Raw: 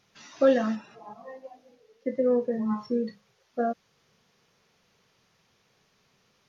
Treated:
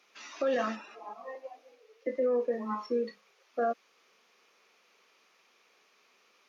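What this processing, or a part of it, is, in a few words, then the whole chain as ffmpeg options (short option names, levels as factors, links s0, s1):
laptop speaker: -filter_complex "[0:a]asettb=1/sr,asplit=3[s0][s1][s2];[s0]atrim=end=1.354[s3];[s1]atrim=start=1.35:end=2.07,asetpts=PTS-STARTPTS,afade=t=in:d=0.004:c=qsin,afade=t=out:st=0.716:d=0.004:c=qsin,highpass=f=300:w=0.5412,highpass=f=300:w=1.3066[s4];[s2]atrim=start=2.066[s5];[s3][s4]acrossfade=d=0.004:c1=hsin:c2=qsin[s6];[s6][s5]acrossfade=d=0.004:c1=qsin:c2=hsin,highpass=f=290:w=0.5412,highpass=f=290:w=1.3066,equalizer=f=1200:t=o:w=0.33:g=5.5,equalizer=f=2400:t=o:w=0.41:g=7,alimiter=limit=0.0841:level=0:latency=1:release=16"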